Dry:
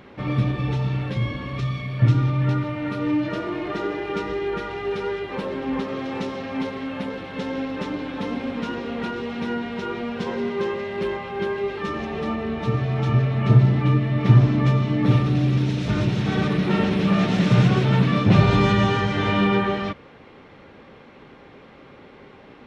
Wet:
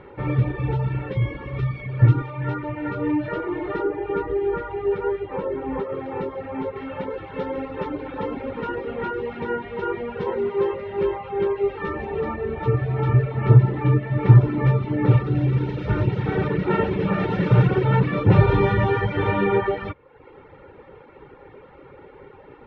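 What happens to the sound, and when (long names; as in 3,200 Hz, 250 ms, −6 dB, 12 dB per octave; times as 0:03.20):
0:02.22–0:02.63: low-shelf EQ 360 Hz −6 dB
0:03.82–0:06.76: high-shelf EQ 2,600 Hz −9 dB
whole clip: low-pass filter 1,800 Hz 12 dB per octave; reverb reduction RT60 0.76 s; comb filter 2.2 ms, depth 62%; level +2 dB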